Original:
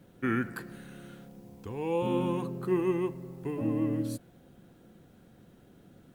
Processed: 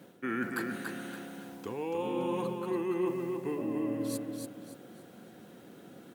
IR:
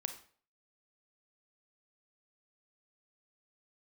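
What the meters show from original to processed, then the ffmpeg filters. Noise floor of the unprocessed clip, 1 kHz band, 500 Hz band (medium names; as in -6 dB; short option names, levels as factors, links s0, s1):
-58 dBFS, -0.5 dB, -1.5 dB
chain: -af "highpass=230,areverse,acompressor=threshold=0.0126:ratio=6,areverse,aecho=1:1:285|570|855|1140:0.562|0.191|0.065|0.0221,volume=2.24"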